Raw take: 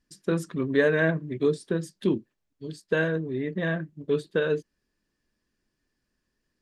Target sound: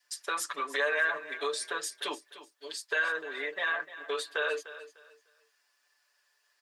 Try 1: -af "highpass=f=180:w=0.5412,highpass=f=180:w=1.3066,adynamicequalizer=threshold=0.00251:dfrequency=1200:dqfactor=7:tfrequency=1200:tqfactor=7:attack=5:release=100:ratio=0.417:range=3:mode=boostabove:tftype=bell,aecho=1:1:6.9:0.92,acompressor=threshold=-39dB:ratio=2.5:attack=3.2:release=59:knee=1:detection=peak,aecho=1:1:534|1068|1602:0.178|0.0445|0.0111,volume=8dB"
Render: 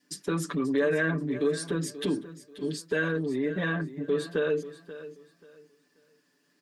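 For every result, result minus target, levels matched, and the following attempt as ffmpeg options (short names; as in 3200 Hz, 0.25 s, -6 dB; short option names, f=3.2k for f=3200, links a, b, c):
250 Hz band +19.0 dB; echo 0.234 s late
-af "highpass=f=710:w=0.5412,highpass=f=710:w=1.3066,adynamicequalizer=threshold=0.00251:dfrequency=1200:dqfactor=7:tfrequency=1200:tqfactor=7:attack=5:release=100:ratio=0.417:range=3:mode=boostabove:tftype=bell,aecho=1:1:6.9:0.92,acompressor=threshold=-39dB:ratio=2.5:attack=3.2:release=59:knee=1:detection=peak,aecho=1:1:534|1068|1602:0.178|0.0445|0.0111,volume=8dB"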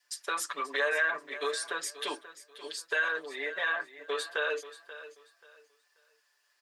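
echo 0.234 s late
-af "highpass=f=710:w=0.5412,highpass=f=710:w=1.3066,adynamicequalizer=threshold=0.00251:dfrequency=1200:dqfactor=7:tfrequency=1200:tqfactor=7:attack=5:release=100:ratio=0.417:range=3:mode=boostabove:tftype=bell,aecho=1:1:6.9:0.92,acompressor=threshold=-39dB:ratio=2.5:attack=3.2:release=59:knee=1:detection=peak,aecho=1:1:300|600|900:0.178|0.0445|0.0111,volume=8dB"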